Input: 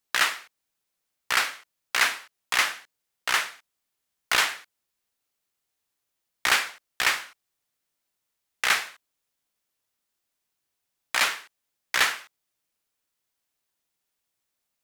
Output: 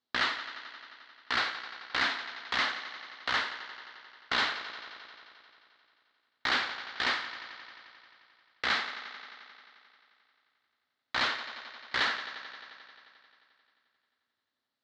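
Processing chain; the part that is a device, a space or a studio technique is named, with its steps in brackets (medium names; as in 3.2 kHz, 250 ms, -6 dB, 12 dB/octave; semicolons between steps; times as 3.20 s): analogue delay pedal into a guitar amplifier (bucket-brigade echo 88 ms, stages 4096, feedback 80%, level -16 dB; valve stage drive 21 dB, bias 0.25; cabinet simulation 86–4300 Hz, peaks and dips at 170 Hz -7 dB, 250 Hz +8 dB, 2.5 kHz -8 dB, 4.1 kHz +5 dB)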